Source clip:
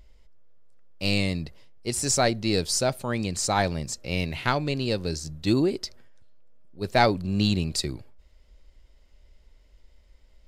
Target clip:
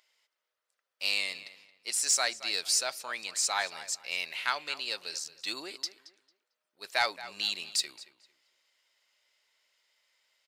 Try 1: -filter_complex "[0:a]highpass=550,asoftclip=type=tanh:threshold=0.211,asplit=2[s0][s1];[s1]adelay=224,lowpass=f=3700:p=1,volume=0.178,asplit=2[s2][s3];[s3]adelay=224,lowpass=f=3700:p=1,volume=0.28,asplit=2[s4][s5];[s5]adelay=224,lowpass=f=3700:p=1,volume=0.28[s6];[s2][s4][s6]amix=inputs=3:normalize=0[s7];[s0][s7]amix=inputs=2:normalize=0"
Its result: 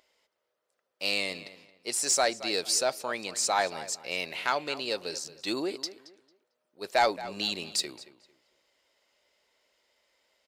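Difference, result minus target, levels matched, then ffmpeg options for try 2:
500 Hz band +9.5 dB
-filter_complex "[0:a]highpass=1300,asoftclip=type=tanh:threshold=0.211,asplit=2[s0][s1];[s1]adelay=224,lowpass=f=3700:p=1,volume=0.178,asplit=2[s2][s3];[s3]adelay=224,lowpass=f=3700:p=1,volume=0.28,asplit=2[s4][s5];[s5]adelay=224,lowpass=f=3700:p=1,volume=0.28[s6];[s2][s4][s6]amix=inputs=3:normalize=0[s7];[s0][s7]amix=inputs=2:normalize=0"

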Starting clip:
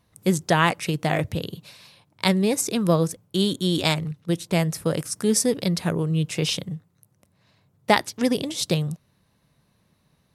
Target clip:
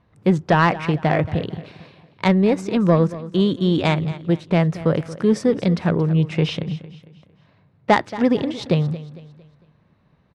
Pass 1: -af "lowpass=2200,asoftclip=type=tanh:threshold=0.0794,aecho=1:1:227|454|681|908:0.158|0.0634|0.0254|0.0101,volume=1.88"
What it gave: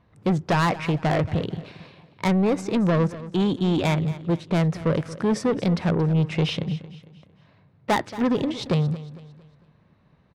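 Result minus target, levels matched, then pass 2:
saturation: distortion +11 dB
-af "lowpass=2200,asoftclip=type=tanh:threshold=0.282,aecho=1:1:227|454|681|908:0.158|0.0634|0.0254|0.0101,volume=1.88"

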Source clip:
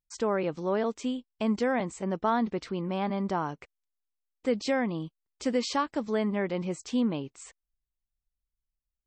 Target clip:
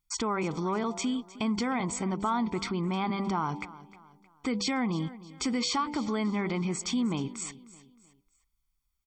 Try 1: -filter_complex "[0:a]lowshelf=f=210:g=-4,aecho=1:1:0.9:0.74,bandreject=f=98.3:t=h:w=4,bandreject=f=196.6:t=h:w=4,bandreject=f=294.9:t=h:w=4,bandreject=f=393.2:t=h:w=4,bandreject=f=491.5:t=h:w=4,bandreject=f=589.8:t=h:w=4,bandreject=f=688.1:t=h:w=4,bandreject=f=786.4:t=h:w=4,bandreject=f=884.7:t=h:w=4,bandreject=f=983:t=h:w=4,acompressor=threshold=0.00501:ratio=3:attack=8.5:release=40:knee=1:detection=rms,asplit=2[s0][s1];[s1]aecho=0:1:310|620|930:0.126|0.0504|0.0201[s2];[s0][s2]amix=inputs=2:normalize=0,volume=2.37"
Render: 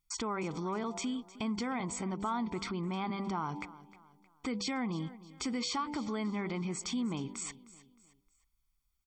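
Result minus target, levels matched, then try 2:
compression: peak gain reduction +5.5 dB
-filter_complex "[0:a]lowshelf=f=210:g=-4,aecho=1:1:0.9:0.74,bandreject=f=98.3:t=h:w=4,bandreject=f=196.6:t=h:w=4,bandreject=f=294.9:t=h:w=4,bandreject=f=393.2:t=h:w=4,bandreject=f=491.5:t=h:w=4,bandreject=f=589.8:t=h:w=4,bandreject=f=688.1:t=h:w=4,bandreject=f=786.4:t=h:w=4,bandreject=f=884.7:t=h:w=4,bandreject=f=983:t=h:w=4,acompressor=threshold=0.0133:ratio=3:attack=8.5:release=40:knee=1:detection=rms,asplit=2[s0][s1];[s1]aecho=0:1:310|620|930:0.126|0.0504|0.0201[s2];[s0][s2]amix=inputs=2:normalize=0,volume=2.37"

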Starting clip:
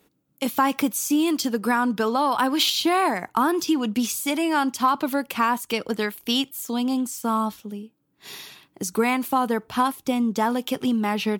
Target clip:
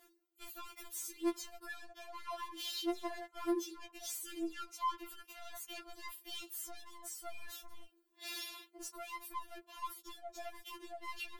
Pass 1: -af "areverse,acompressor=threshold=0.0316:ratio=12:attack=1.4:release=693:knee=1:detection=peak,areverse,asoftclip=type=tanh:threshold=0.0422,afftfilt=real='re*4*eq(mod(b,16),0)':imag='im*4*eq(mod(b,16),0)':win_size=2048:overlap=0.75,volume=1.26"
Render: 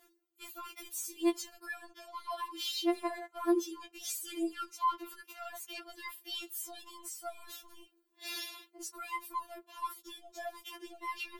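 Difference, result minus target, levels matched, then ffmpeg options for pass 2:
saturation: distortion -14 dB
-af "areverse,acompressor=threshold=0.0316:ratio=12:attack=1.4:release=693:knee=1:detection=peak,areverse,asoftclip=type=tanh:threshold=0.0112,afftfilt=real='re*4*eq(mod(b,16),0)':imag='im*4*eq(mod(b,16),0)':win_size=2048:overlap=0.75,volume=1.26"

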